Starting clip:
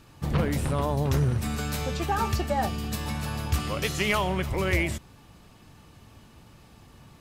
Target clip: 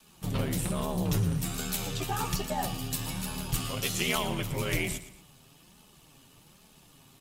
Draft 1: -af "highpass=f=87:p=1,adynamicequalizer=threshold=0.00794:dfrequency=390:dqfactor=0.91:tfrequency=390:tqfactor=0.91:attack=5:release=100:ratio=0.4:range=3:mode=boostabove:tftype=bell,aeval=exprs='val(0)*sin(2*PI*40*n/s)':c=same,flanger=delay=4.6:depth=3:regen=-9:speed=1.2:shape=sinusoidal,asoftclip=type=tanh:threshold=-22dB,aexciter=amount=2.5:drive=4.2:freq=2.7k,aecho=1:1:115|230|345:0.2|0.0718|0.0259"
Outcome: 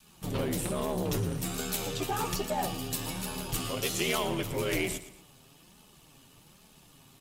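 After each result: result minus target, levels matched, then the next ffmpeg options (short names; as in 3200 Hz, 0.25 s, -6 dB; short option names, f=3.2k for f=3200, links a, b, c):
soft clip: distortion +14 dB; 500 Hz band +4.0 dB
-af "highpass=f=87:p=1,adynamicequalizer=threshold=0.00794:dfrequency=390:dqfactor=0.91:tfrequency=390:tqfactor=0.91:attack=5:release=100:ratio=0.4:range=3:mode=boostabove:tftype=bell,aeval=exprs='val(0)*sin(2*PI*40*n/s)':c=same,flanger=delay=4.6:depth=3:regen=-9:speed=1.2:shape=sinusoidal,asoftclip=type=tanh:threshold=-13.5dB,aexciter=amount=2.5:drive=4.2:freq=2.7k,aecho=1:1:115|230|345:0.2|0.0718|0.0259"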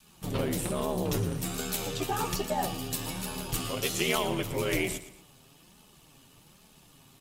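500 Hz band +4.5 dB
-af "highpass=f=87:p=1,adynamicequalizer=threshold=0.00794:dfrequency=110:dqfactor=0.91:tfrequency=110:tqfactor=0.91:attack=5:release=100:ratio=0.4:range=3:mode=boostabove:tftype=bell,aeval=exprs='val(0)*sin(2*PI*40*n/s)':c=same,flanger=delay=4.6:depth=3:regen=-9:speed=1.2:shape=sinusoidal,asoftclip=type=tanh:threshold=-13.5dB,aexciter=amount=2.5:drive=4.2:freq=2.7k,aecho=1:1:115|230|345:0.2|0.0718|0.0259"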